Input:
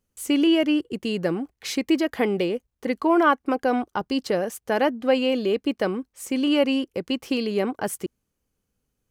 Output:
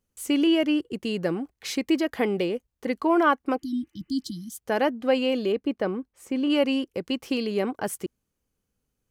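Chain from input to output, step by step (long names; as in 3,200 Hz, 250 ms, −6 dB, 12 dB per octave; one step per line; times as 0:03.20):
0:03.61–0:04.56: healed spectral selection 340–3,000 Hz after
0:05.52–0:06.50: high-shelf EQ 2,800 Hz −11 dB
level −2 dB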